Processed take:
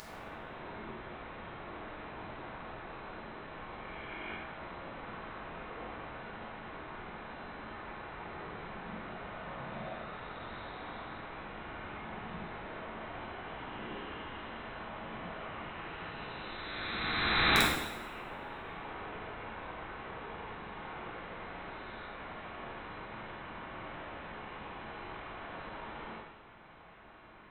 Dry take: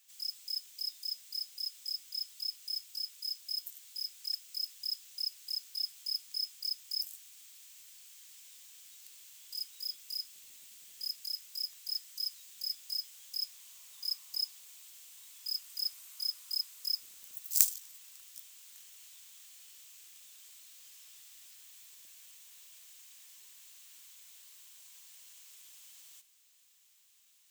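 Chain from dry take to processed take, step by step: reverse spectral sustain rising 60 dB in 2.85 s; frequency inversion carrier 4 kHz; integer overflow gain 30 dB; two-slope reverb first 0.93 s, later 2.4 s, from -24 dB, DRR -3.5 dB; trim +12.5 dB

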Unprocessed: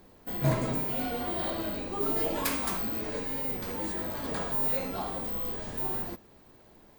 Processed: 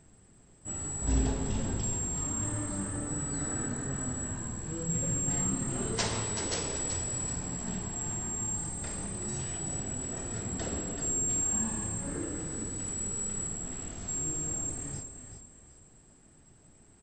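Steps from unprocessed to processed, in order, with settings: wide varispeed 0.41×; frequency-shifting echo 381 ms, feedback 34%, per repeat -35 Hz, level -8.5 dB; trim -2.5 dB

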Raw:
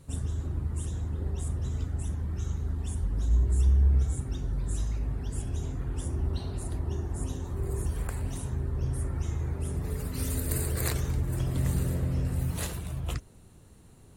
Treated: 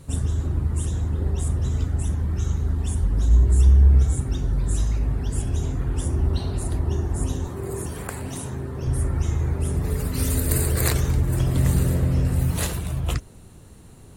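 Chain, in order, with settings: 7.48–8.87 s: Bessel high-pass 160 Hz, order 2; trim +8 dB

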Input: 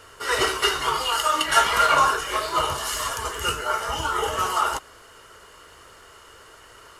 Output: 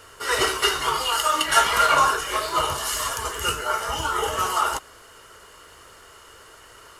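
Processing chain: treble shelf 7 kHz +4 dB

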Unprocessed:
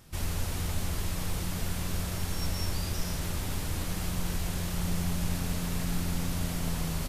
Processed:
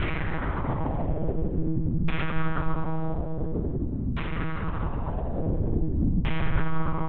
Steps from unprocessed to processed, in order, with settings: reverberation RT60 3.3 s, pre-delay 105 ms, DRR 7.5 dB; Paulstretch 38×, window 0.05 s, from 4.02 s; monotone LPC vocoder at 8 kHz 160 Hz; LFO low-pass saw down 0.48 Hz 210–2500 Hz; trim +5 dB

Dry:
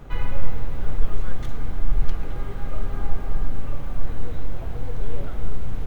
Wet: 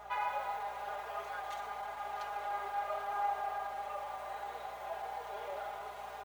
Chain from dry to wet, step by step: ladder high-pass 660 Hz, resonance 60%; comb 4.9 ms, depth 70%; hum 60 Hz, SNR 26 dB; tempo 0.94×; harmonic-percussive split percussive -7 dB; trim +8 dB

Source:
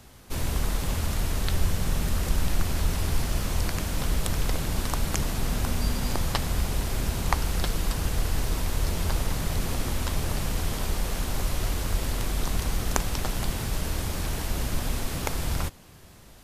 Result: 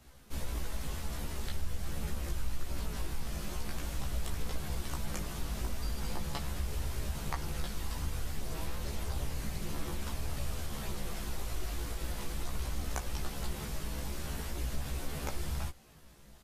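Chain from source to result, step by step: doubling 14 ms -4 dB; compression 2.5:1, threshold -24 dBFS, peak gain reduction 7 dB; chorus voices 4, 0.42 Hz, delay 17 ms, depth 3.1 ms; trim -6.5 dB

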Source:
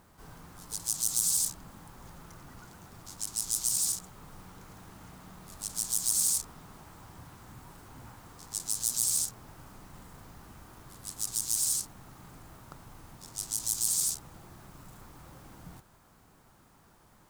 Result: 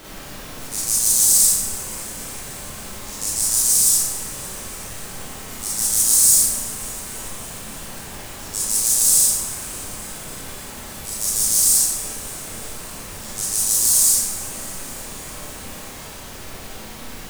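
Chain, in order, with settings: treble shelf 3.7 kHz +11 dB; added noise pink -40 dBFS; on a send: thinning echo 289 ms, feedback 75%, level -17.5 dB; on the sum: Schroeder reverb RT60 0.72 s, combs from 29 ms, DRR -6.5 dB; trim -3 dB

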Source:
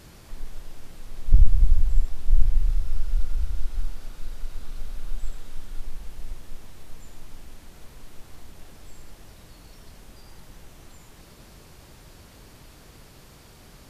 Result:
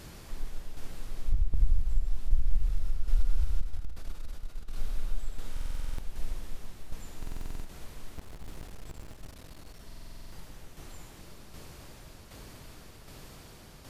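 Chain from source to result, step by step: 8.16–9.82 s: cycle switcher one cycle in 3, muted; compression 12:1, threshold -17 dBFS, peak gain reduction 11.5 dB; tremolo saw down 1.3 Hz, depth 50%; 3.61–4.76 s: valve stage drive 28 dB, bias 0.55; reverberation RT60 2.3 s, pre-delay 95 ms, DRR 8.5 dB; buffer glitch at 5.52/7.18/9.86 s, samples 2048, times 9; trim +1.5 dB

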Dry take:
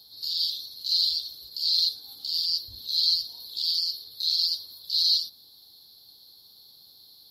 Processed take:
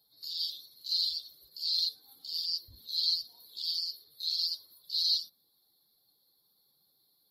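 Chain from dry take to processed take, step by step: expander on every frequency bin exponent 1.5; trim -4 dB

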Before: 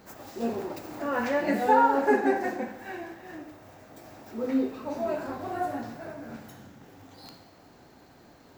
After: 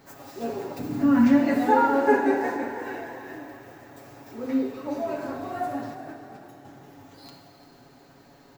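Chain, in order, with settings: 0.79–1.40 s: resonant low shelf 330 Hz +11.5 dB, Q 3; 5.94–6.65 s: gate -38 dBFS, range -9 dB; comb 7.2 ms; frequency-shifting echo 344 ms, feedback 49%, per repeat +34 Hz, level -15 dB; Schroeder reverb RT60 3.3 s, combs from 25 ms, DRR 7.5 dB; trim -1.5 dB

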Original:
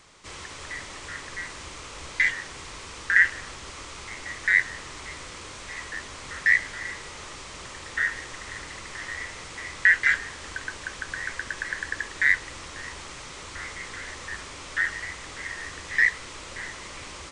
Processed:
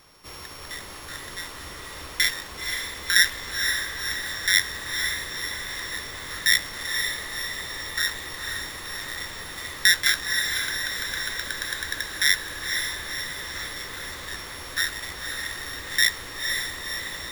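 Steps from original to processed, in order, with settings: sorted samples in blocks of 8 samples; echo that smears into a reverb 513 ms, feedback 62%, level -5 dB

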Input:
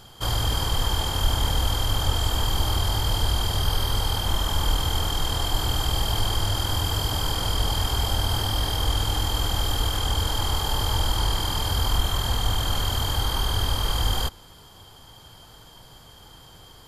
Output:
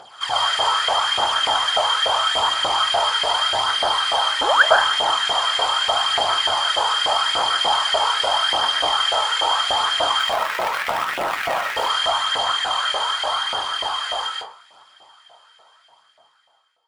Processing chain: fade out at the end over 5.36 s; resampled via 22.05 kHz; 4.41–4.63 s: painted sound rise 240–1900 Hz -24 dBFS; 10.19–11.76 s: Schmitt trigger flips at -22.5 dBFS; phaser 0.81 Hz, delay 2.4 ms, feedback 55%; tone controls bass +7 dB, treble -7 dB; reverberation RT60 0.45 s, pre-delay 90 ms, DRR -3 dB; LFO high-pass saw up 3.4 Hz 610–2000 Hz; trim +2.5 dB

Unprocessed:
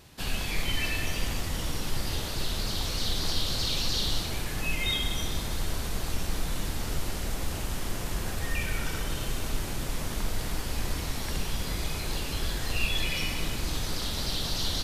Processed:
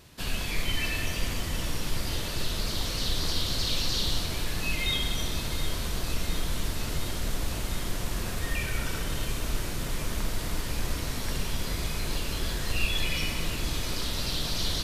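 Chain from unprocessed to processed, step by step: band-stop 800 Hz, Q 12; echo whose repeats swap between lows and highs 356 ms, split 1.1 kHz, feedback 89%, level -12 dB

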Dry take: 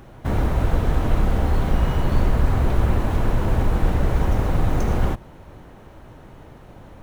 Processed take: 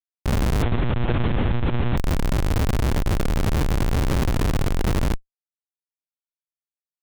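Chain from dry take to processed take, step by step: Schmitt trigger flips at -22 dBFS; 0.62–1.97 s: monotone LPC vocoder at 8 kHz 120 Hz

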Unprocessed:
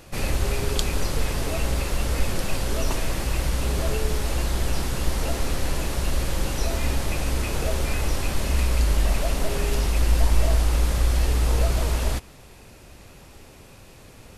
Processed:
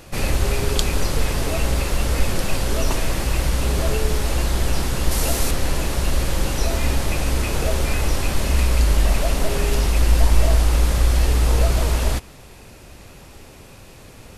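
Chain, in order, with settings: 5.11–5.51 s: treble shelf 5.6 kHz +10.5 dB; trim +4 dB

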